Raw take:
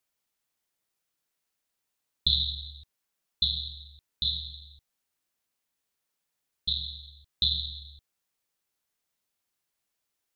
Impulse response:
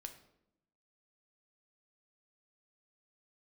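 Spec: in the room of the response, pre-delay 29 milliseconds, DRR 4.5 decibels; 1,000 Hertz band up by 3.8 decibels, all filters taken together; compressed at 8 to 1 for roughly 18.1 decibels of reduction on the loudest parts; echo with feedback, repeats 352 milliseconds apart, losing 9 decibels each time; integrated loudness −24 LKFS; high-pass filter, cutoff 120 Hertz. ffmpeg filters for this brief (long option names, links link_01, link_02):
-filter_complex "[0:a]highpass=120,equalizer=frequency=1000:width_type=o:gain=5,acompressor=threshold=-40dB:ratio=8,aecho=1:1:352|704|1056|1408:0.355|0.124|0.0435|0.0152,asplit=2[link_01][link_02];[1:a]atrim=start_sample=2205,adelay=29[link_03];[link_02][link_03]afir=irnorm=-1:irlink=0,volume=0dB[link_04];[link_01][link_04]amix=inputs=2:normalize=0,volume=19.5dB"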